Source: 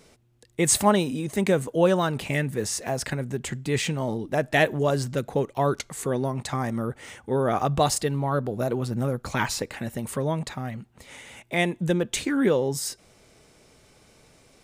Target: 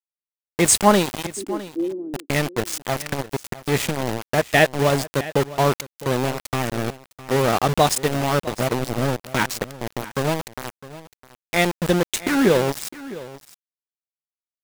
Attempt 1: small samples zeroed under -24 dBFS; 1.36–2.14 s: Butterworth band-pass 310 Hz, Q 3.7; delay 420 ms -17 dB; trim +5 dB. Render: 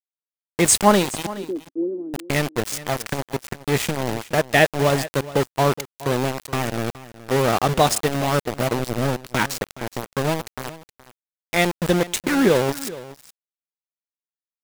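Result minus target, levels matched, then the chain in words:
echo 238 ms early
small samples zeroed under -24 dBFS; 1.36–2.14 s: Butterworth band-pass 310 Hz, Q 3.7; delay 658 ms -17 dB; trim +5 dB

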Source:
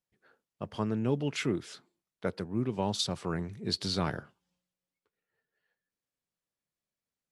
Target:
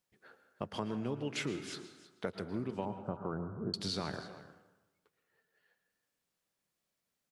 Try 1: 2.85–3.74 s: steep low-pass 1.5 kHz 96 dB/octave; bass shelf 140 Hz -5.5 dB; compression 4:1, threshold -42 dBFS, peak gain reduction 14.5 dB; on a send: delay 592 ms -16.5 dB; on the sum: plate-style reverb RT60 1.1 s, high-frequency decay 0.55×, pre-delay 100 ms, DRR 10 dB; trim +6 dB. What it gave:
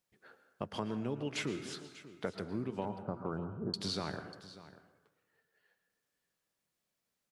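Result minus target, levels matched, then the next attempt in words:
echo 277 ms late
2.85–3.74 s: steep low-pass 1.5 kHz 96 dB/octave; bass shelf 140 Hz -5.5 dB; compression 4:1, threshold -42 dBFS, peak gain reduction 14.5 dB; on a send: delay 315 ms -16.5 dB; on the sum: plate-style reverb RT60 1.1 s, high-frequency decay 0.55×, pre-delay 100 ms, DRR 10 dB; trim +6 dB

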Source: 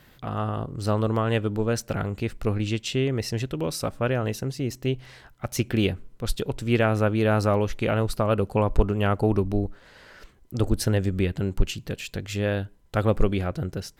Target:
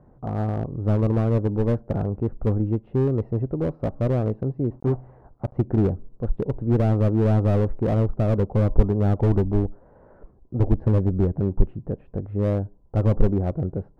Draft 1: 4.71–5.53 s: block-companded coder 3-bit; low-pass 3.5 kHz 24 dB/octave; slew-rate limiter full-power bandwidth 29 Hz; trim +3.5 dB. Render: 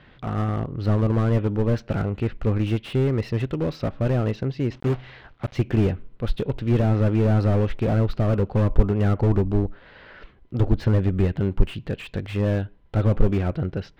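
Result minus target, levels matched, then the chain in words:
4 kHz band +11.5 dB
4.71–5.53 s: block-companded coder 3-bit; low-pass 890 Hz 24 dB/octave; slew-rate limiter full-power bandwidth 29 Hz; trim +3.5 dB

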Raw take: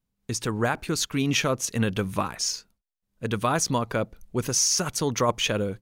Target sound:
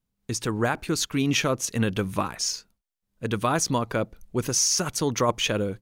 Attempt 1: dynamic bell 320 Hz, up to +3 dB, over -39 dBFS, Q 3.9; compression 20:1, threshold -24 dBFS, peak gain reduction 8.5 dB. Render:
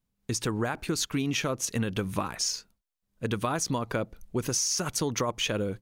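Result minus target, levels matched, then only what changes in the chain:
compression: peak gain reduction +8.5 dB
remove: compression 20:1, threshold -24 dBFS, peak gain reduction 8.5 dB

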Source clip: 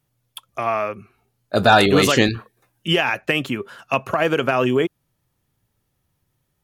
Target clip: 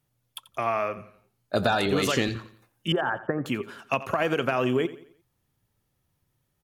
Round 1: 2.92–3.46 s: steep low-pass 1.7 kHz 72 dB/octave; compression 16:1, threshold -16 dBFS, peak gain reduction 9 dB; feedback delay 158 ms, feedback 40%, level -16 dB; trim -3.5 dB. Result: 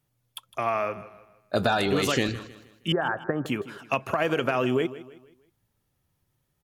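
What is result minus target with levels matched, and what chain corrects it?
echo 71 ms late
2.92–3.46 s: steep low-pass 1.7 kHz 72 dB/octave; compression 16:1, threshold -16 dBFS, peak gain reduction 9 dB; feedback delay 87 ms, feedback 40%, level -16 dB; trim -3.5 dB

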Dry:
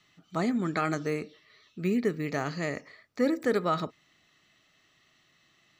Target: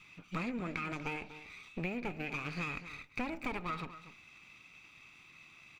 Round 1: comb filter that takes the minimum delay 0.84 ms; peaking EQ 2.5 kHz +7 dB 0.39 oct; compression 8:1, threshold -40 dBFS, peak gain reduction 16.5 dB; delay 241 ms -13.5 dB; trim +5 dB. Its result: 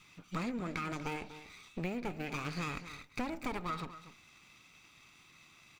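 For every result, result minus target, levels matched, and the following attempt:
8 kHz band +6.0 dB; 2 kHz band -3.0 dB
comb filter that takes the minimum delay 0.84 ms; peaking EQ 2.5 kHz +7 dB 0.39 oct; compression 8:1, threshold -40 dBFS, peak gain reduction 16.5 dB; treble shelf 4.6 kHz -7 dB; delay 241 ms -13.5 dB; trim +5 dB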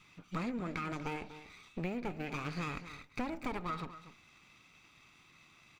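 2 kHz band -3.5 dB
comb filter that takes the minimum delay 0.84 ms; peaking EQ 2.5 kHz +16 dB 0.39 oct; compression 8:1, threshold -40 dBFS, peak gain reduction 17 dB; treble shelf 4.6 kHz -7 dB; delay 241 ms -13.5 dB; trim +5 dB

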